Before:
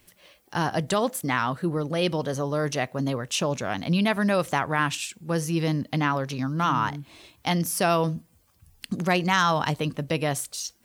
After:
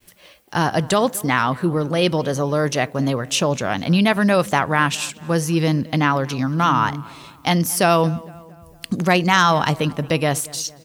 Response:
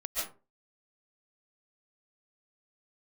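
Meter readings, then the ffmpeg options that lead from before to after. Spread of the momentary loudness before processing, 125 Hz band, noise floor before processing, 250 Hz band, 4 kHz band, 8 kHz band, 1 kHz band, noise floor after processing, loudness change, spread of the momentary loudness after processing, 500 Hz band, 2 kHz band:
7 LU, +6.5 dB, -63 dBFS, +6.5 dB, +6.5 dB, +6.5 dB, +6.5 dB, -48 dBFS, +6.5 dB, 7 LU, +6.5 dB, +6.5 dB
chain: -filter_complex "[0:a]agate=range=-33dB:threshold=-59dB:ratio=3:detection=peak,asplit=2[a][b];[b]adelay=227,lowpass=f=2.5k:p=1,volume=-21dB,asplit=2[c][d];[d]adelay=227,lowpass=f=2.5k:p=1,volume=0.54,asplit=2[e][f];[f]adelay=227,lowpass=f=2.5k:p=1,volume=0.54,asplit=2[g][h];[h]adelay=227,lowpass=f=2.5k:p=1,volume=0.54[i];[c][e][g][i]amix=inputs=4:normalize=0[j];[a][j]amix=inputs=2:normalize=0,volume=6.5dB"

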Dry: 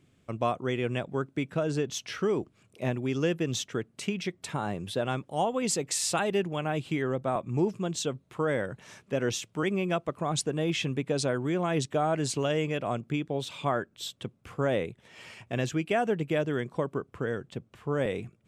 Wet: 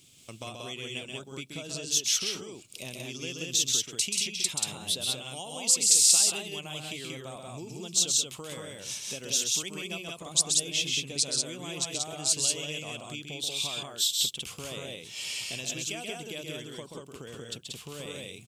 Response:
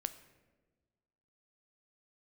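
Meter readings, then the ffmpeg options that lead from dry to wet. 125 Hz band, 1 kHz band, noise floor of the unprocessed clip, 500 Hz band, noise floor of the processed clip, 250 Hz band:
-11.0 dB, -12.5 dB, -66 dBFS, -12.0 dB, -49 dBFS, -11.5 dB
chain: -af "acompressor=threshold=-44dB:ratio=2.5,aexciter=amount=11.1:drive=3.7:freq=2.6k,aecho=1:1:131.2|183.7:0.562|0.794,volume=-2.5dB"

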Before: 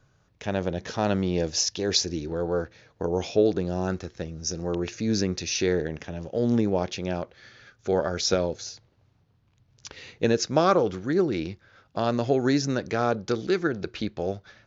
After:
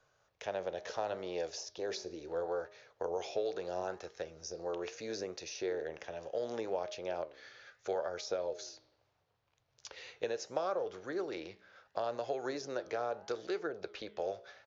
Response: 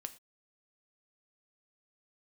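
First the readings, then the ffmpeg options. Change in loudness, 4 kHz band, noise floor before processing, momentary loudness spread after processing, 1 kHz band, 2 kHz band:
-13.0 dB, -15.5 dB, -65 dBFS, 9 LU, -10.0 dB, -11.5 dB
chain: -filter_complex "[0:a]lowshelf=f=360:t=q:w=1.5:g=-13,bandreject=f=206.3:t=h:w=4,bandreject=f=412.6:t=h:w=4,bandreject=f=618.9:t=h:w=4,bandreject=f=825.2:t=h:w=4,bandreject=f=1.0315k:t=h:w=4,bandreject=f=1.2378k:t=h:w=4,acrossover=split=240|890[a][b][c];[a]acompressor=threshold=-52dB:ratio=4[d];[b]acompressor=threshold=-30dB:ratio=4[e];[c]acompressor=threshold=-41dB:ratio=4[f];[d][e][f]amix=inputs=3:normalize=0,flanger=delay=6.4:depth=9.8:regen=86:speed=0.73:shape=sinusoidal,aresample=16000,aresample=44100"

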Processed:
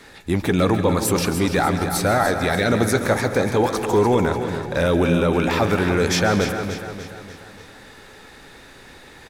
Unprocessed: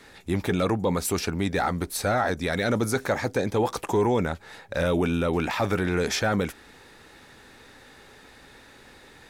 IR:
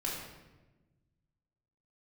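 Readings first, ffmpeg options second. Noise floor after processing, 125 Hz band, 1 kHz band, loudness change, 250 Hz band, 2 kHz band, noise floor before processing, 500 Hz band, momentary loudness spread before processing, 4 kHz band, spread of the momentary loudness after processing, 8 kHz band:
-45 dBFS, +6.5 dB, +6.0 dB, +6.0 dB, +6.5 dB, +6.0 dB, -51 dBFS, +6.0 dB, 4 LU, +6.0 dB, 8 LU, +6.0 dB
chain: -filter_complex "[0:a]aecho=1:1:294|588|882|1176|1470:0.335|0.164|0.0804|0.0394|0.0193,asplit=2[a][b];[1:a]atrim=start_sample=2205,adelay=137[c];[b][c]afir=irnorm=-1:irlink=0,volume=-13.5dB[d];[a][d]amix=inputs=2:normalize=0,volume=5dB"

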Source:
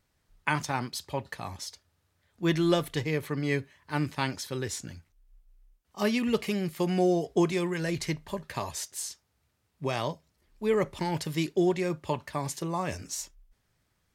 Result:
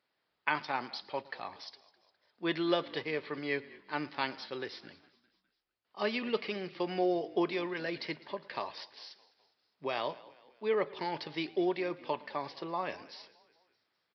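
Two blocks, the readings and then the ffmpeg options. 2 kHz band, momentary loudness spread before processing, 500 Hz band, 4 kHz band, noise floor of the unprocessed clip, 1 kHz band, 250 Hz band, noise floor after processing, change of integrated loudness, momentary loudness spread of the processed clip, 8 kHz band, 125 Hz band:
-2.5 dB, 11 LU, -4.5 dB, -3.0 dB, -75 dBFS, -2.5 dB, -8.0 dB, -82 dBFS, -5.0 dB, 14 LU, under -25 dB, -16.5 dB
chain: -filter_complex "[0:a]asplit=2[a][b];[b]asplit=4[c][d][e][f];[c]adelay=205,afreqshift=-49,volume=-21dB[g];[d]adelay=410,afreqshift=-98,volume=-26.5dB[h];[e]adelay=615,afreqshift=-147,volume=-32dB[i];[f]adelay=820,afreqshift=-196,volume=-37.5dB[j];[g][h][i][j]amix=inputs=4:normalize=0[k];[a][k]amix=inputs=2:normalize=0,aresample=11025,aresample=44100,highpass=360,asplit=2[l][m];[m]aecho=0:1:112|224|336:0.0794|0.0357|0.0161[n];[l][n]amix=inputs=2:normalize=0,volume=-2.5dB"

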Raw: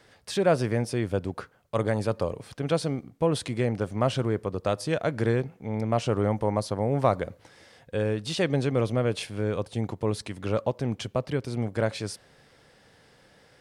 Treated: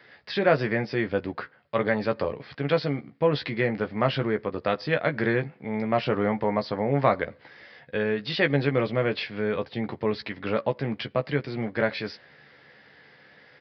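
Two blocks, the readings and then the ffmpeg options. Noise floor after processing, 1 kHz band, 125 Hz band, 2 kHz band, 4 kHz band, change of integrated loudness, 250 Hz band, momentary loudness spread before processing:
-56 dBFS, +2.5 dB, -2.5 dB, +8.0 dB, +2.0 dB, +1.0 dB, +1.0 dB, 8 LU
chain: -filter_complex "[0:a]highpass=120,equalizer=f=1.9k:w=1.9:g=9.5,asplit=2[a][b];[b]adelay=14,volume=-6.5dB[c];[a][c]amix=inputs=2:normalize=0,aresample=11025,aresample=44100"

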